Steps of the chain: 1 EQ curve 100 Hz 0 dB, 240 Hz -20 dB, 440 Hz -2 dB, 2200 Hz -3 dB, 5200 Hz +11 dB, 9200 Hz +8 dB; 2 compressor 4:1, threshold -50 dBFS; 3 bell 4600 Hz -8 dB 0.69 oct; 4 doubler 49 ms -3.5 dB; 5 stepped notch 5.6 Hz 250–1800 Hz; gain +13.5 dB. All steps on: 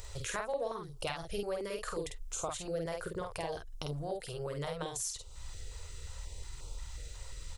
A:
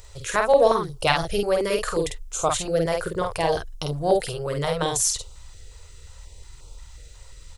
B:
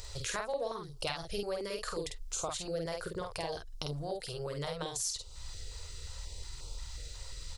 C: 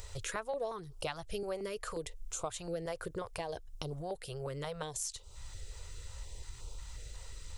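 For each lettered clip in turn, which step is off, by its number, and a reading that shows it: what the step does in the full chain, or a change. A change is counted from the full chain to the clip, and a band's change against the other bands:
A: 2, mean gain reduction 9.0 dB; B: 3, 4 kHz band +4.5 dB; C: 4, crest factor change +2.0 dB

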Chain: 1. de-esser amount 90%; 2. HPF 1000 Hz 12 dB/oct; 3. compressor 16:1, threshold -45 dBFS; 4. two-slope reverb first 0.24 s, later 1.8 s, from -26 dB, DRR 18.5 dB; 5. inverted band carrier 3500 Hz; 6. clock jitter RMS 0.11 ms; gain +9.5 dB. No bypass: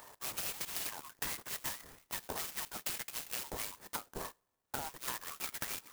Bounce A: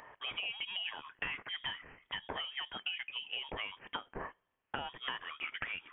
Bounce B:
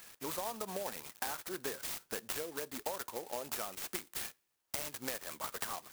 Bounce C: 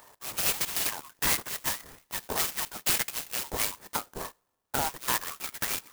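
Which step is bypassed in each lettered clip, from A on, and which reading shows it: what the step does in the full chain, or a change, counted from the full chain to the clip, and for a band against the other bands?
6, 4 kHz band +7.5 dB; 5, 500 Hz band +9.0 dB; 3, mean gain reduction 7.0 dB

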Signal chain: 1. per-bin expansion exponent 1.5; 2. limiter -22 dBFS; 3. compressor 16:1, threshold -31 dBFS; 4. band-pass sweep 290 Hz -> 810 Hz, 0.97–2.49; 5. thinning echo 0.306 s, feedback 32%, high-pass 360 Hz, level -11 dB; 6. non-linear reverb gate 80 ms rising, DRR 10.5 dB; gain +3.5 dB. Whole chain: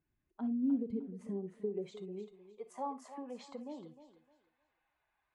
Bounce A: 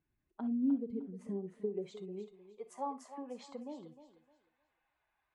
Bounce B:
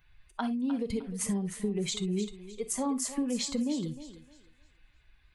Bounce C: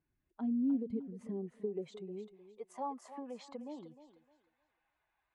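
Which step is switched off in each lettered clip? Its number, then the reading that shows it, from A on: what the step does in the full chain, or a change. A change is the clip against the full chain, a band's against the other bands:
2, momentary loudness spread change +1 LU; 4, 4 kHz band +16.0 dB; 6, echo-to-direct -7.5 dB to -11.0 dB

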